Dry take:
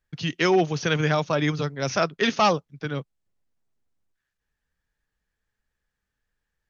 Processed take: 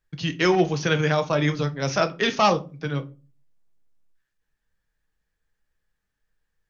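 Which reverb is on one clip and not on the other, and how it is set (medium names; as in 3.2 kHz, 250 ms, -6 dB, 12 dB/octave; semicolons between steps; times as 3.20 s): simulated room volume 140 m³, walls furnished, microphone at 0.59 m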